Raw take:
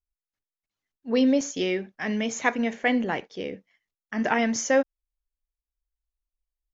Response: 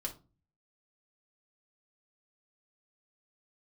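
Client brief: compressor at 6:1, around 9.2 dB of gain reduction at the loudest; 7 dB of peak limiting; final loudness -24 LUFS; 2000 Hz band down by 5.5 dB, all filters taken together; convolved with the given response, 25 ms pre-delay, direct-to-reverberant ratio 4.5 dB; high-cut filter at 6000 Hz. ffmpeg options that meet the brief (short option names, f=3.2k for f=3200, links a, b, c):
-filter_complex "[0:a]lowpass=6k,equalizer=f=2k:t=o:g=-6.5,acompressor=threshold=-27dB:ratio=6,alimiter=limit=-23.5dB:level=0:latency=1,asplit=2[a][b];[1:a]atrim=start_sample=2205,adelay=25[c];[b][c]afir=irnorm=-1:irlink=0,volume=-4.5dB[d];[a][d]amix=inputs=2:normalize=0,volume=9dB"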